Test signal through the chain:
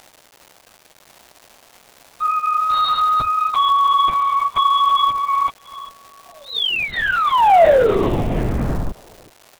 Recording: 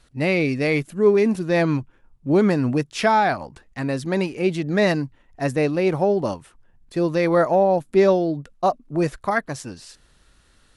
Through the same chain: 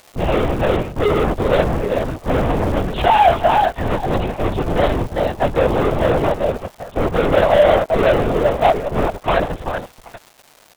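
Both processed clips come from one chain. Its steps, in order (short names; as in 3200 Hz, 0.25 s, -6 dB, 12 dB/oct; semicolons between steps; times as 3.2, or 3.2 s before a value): per-bin expansion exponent 1.5; in parallel at -3 dB: Schmitt trigger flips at -22.5 dBFS; on the sum: bell 2100 Hz -13 dB 0.27 oct; on a send: feedback echo 0.39 s, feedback 43%, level -17.5 dB; on the sum: fuzz box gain 38 dB, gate -43 dBFS; bit-crush 12-bit; LPC vocoder at 8 kHz whisper; crackle 460/s -25 dBFS; bell 680 Hz +7.5 dB 1.2 oct; upward expander 1.5:1, over -21 dBFS; gain -1.5 dB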